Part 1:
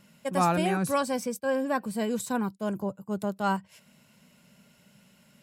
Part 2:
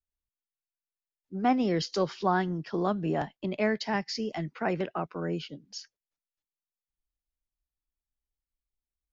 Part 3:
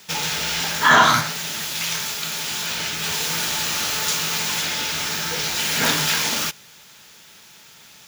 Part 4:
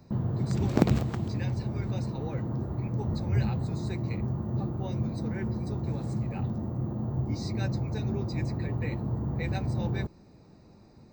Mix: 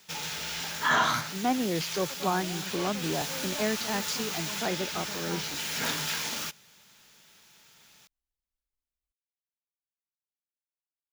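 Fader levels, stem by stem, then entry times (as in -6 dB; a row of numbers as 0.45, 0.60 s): -15.5 dB, -2.5 dB, -11.0 dB, off; 1.85 s, 0.00 s, 0.00 s, off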